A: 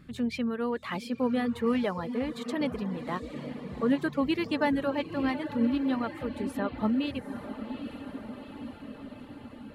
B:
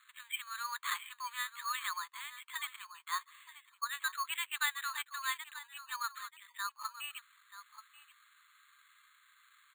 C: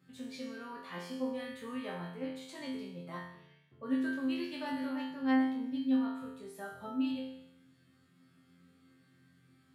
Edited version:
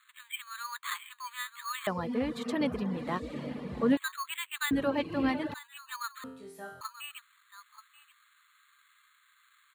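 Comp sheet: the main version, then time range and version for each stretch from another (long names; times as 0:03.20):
B
0:01.87–0:03.97: punch in from A
0:04.71–0:05.54: punch in from A
0:06.24–0:06.81: punch in from C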